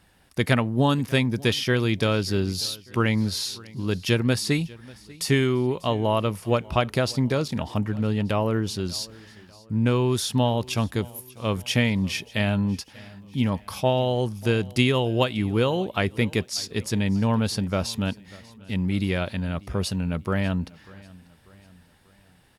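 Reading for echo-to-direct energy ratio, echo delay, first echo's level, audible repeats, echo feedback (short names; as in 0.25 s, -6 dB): -21.5 dB, 0.592 s, -22.5 dB, 2, 48%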